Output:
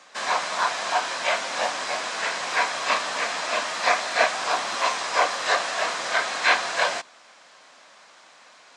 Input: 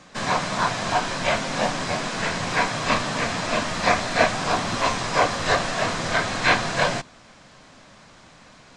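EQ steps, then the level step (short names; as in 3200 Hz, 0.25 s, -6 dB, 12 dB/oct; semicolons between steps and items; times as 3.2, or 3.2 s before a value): HPF 600 Hz 12 dB/oct; 0.0 dB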